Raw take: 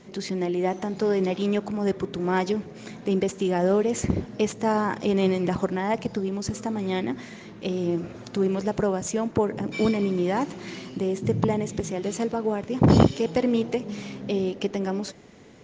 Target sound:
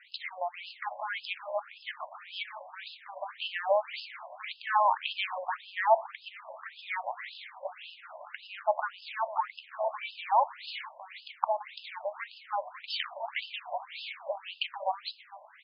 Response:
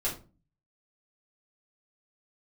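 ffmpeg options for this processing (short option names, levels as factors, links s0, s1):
-filter_complex "[0:a]asettb=1/sr,asplit=3[s0][s1][s2];[s0]atrim=end=10.454[s3];[s1]atrim=start=10.45:end=11.6,asetpts=PTS-STARTPTS,afade=t=in:d=0.004:c=qsin,afade=t=out:st=1.146:d=0.004:c=qsin,lowshelf=f=440:g=-12[s4];[s2]atrim=start=11.596[s5];[s3][s4]acrossfade=d=0.004:c1=hsin:c2=qsin[s6];[s6][s5]acrossfade=d=0.004:c1=qsin:c2=hsin,asplit=4[s7][s8][s9][s10];[s8]adelay=450,afreqshift=36,volume=0.126[s11];[s9]adelay=900,afreqshift=72,volume=0.0531[s12];[s10]adelay=1350,afreqshift=108,volume=0.0221[s13];[s7][s11][s12][s13]amix=inputs=4:normalize=0,asplit=2[s14][s15];[1:a]atrim=start_sample=2205[s16];[s15][s16]afir=irnorm=-1:irlink=0,volume=0.0891[s17];[s14][s17]amix=inputs=2:normalize=0,alimiter=level_in=1.78:limit=0.891:release=50:level=0:latency=1,afftfilt=real='re*between(b*sr/1024,750*pow(3700/750,0.5+0.5*sin(2*PI*1.8*pts/sr))/1.41,750*pow(3700/750,0.5+0.5*sin(2*PI*1.8*pts/sr))*1.41)':imag='im*between(b*sr/1024,750*pow(3700/750,0.5+0.5*sin(2*PI*1.8*pts/sr))/1.41,750*pow(3700/750,0.5+0.5*sin(2*PI*1.8*pts/sr))*1.41)':win_size=1024:overlap=0.75"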